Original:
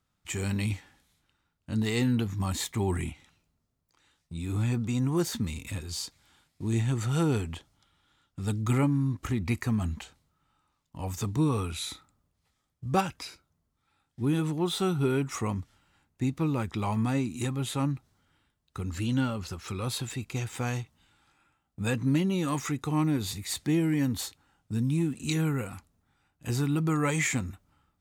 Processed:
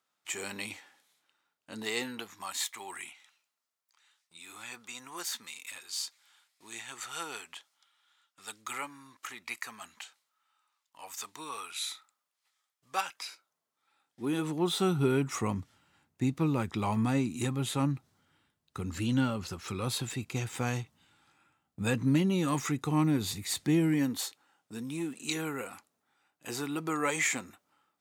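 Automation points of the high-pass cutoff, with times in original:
1.91 s 470 Hz
2.64 s 1.1 kHz
12.91 s 1.1 kHz
14.37 s 290 Hz
14.85 s 110 Hz
23.84 s 110 Hz
24.25 s 380 Hz

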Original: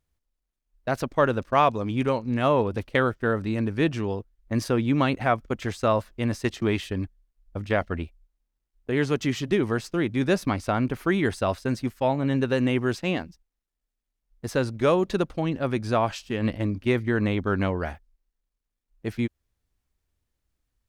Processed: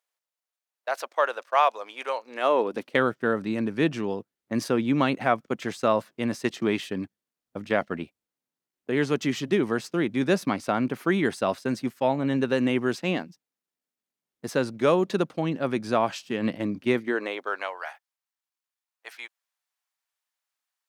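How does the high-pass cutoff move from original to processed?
high-pass 24 dB/octave
2.18 s 570 Hz
3.01 s 150 Hz
16.93 s 150 Hz
17.19 s 350 Hz
17.81 s 760 Hz

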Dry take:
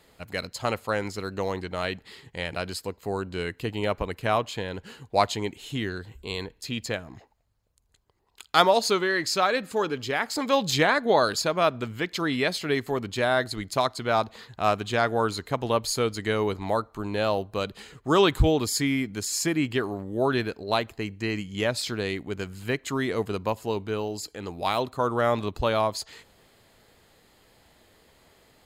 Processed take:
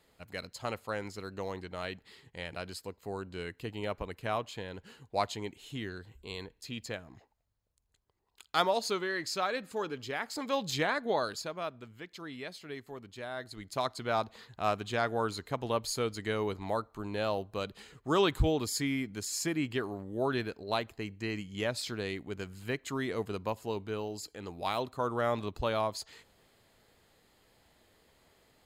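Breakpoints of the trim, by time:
11.08 s -9 dB
11.83 s -17 dB
13.32 s -17 dB
13.89 s -7 dB

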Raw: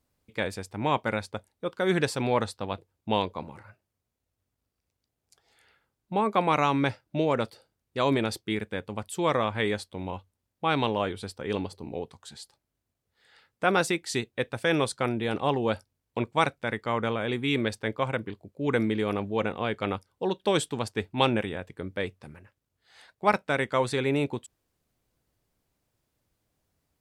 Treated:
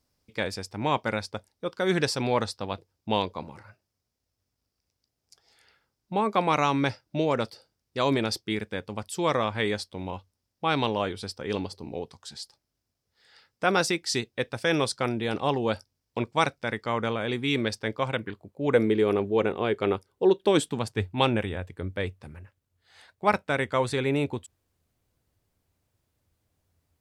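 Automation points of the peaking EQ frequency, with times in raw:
peaking EQ +10.5 dB 0.47 oct
18.07 s 5.2 kHz
18.29 s 1.5 kHz
18.91 s 390 Hz
20.42 s 390 Hz
21.10 s 86 Hz

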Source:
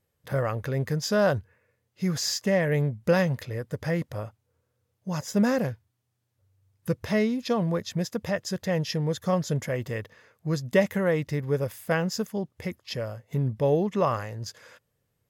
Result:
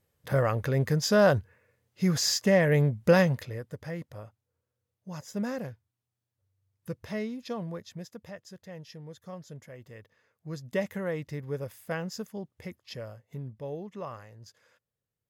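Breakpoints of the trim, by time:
3.21 s +1.5 dB
3.85 s -9.5 dB
7.56 s -9.5 dB
8.59 s -17.5 dB
9.77 s -17.5 dB
10.83 s -8 dB
13.09 s -8 dB
13.56 s -14.5 dB

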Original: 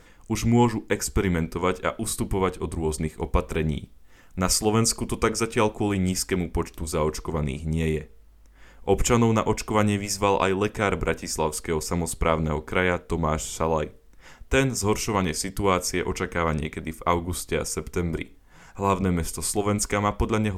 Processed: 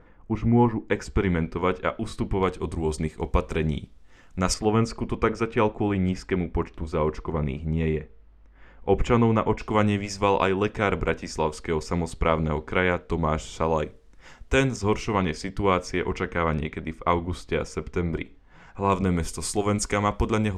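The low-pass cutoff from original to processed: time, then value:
1.4 kHz
from 0.88 s 3.3 kHz
from 2.43 s 6.6 kHz
from 4.54 s 2.5 kHz
from 9.61 s 4.4 kHz
from 13.62 s 7.3 kHz
from 14.76 s 3.6 kHz
from 18.92 s 7.9 kHz

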